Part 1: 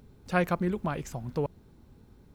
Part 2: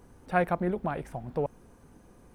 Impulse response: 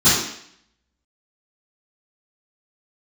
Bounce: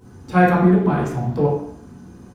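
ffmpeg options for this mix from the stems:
-filter_complex "[0:a]volume=-0.5dB[link_01];[1:a]adelay=1,volume=-3.5dB,asplit=3[link_02][link_03][link_04];[link_03]volume=-9dB[link_05];[link_04]apad=whole_len=103416[link_06];[link_01][link_06]sidechaingate=range=-33dB:threshold=-55dB:ratio=16:detection=peak[link_07];[2:a]atrim=start_sample=2205[link_08];[link_05][link_08]afir=irnorm=-1:irlink=0[link_09];[link_07][link_02][link_09]amix=inputs=3:normalize=0"

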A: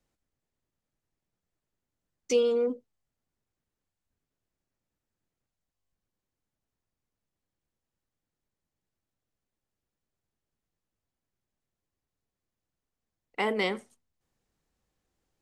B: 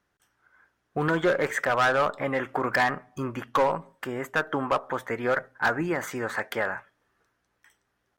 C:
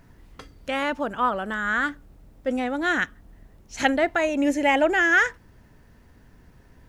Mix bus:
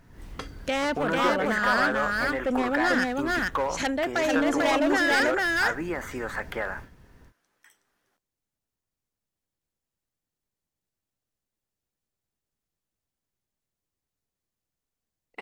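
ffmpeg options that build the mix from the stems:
ffmpeg -i stem1.wav -i stem2.wav -i stem3.wav -filter_complex "[0:a]adelay=2000,volume=-2dB[link_01];[1:a]acrossover=split=3000[link_02][link_03];[link_03]acompressor=threshold=-47dB:ratio=4:attack=1:release=60[link_04];[link_02][link_04]amix=inputs=2:normalize=0,highpass=180,acompressor=threshold=-34dB:ratio=1.5,volume=0.5dB[link_05];[2:a]highshelf=frequency=6400:gain=-8,dynaudnorm=framelen=110:gausssize=3:maxgain=11.5dB,asoftclip=type=hard:threshold=-10.5dB,volume=-3dB,asplit=2[link_06][link_07];[link_07]volume=-9.5dB[link_08];[link_01][link_06]amix=inputs=2:normalize=0,asoftclip=type=tanh:threshold=-12dB,acompressor=threshold=-36dB:ratio=1.5,volume=0dB[link_09];[link_08]aecho=0:1:442:1[link_10];[link_05][link_09][link_10]amix=inputs=3:normalize=0,highshelf=frequency=4500:gain=5.5" out.wav

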